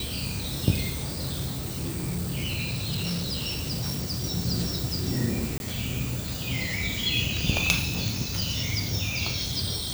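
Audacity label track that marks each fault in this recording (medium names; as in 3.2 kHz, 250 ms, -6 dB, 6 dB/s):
1.030000	4.250000	clipped -25.5 dBFS
5.580000	5.600000	dropout 21 ms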